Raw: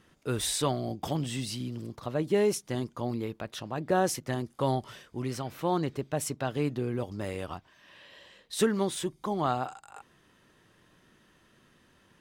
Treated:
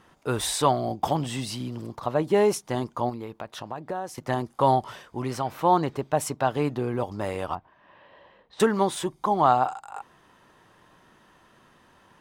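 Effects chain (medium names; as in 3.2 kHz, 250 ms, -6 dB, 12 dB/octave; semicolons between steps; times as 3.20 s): peaking EQ 890 Hz +10.5 dB 1.2 oct; 3.09–4.18 s: compression 3:1, threshold -36 dBFS, peak gain reduction 16 dB; 7.55–8.60 s: tape spacing loss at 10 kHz 39 dB; trim +2 dB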